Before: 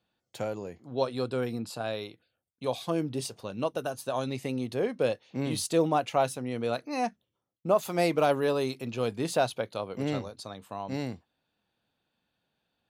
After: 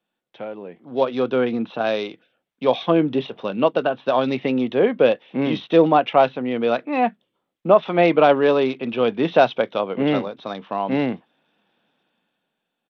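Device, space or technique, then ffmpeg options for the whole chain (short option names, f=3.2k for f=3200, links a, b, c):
Bluetooth headset: -af "highpass=f=170:w=0.5412,highpass=f=170:w=1.3066,dynaudnorm=f=170:g=11:m=13.5dB,aresample=8000,aresample=44100" -ar 32000 -c:a sbc -b:a 64k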